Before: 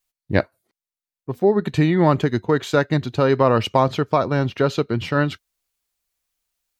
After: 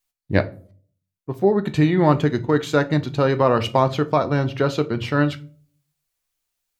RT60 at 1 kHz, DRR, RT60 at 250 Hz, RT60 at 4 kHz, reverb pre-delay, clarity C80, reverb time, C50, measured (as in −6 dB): 0.35 s, 10.0 dB, 0.60 s, 0.25 s, 10 ms, 24.0 dB, 0.45 s, 18.5 dB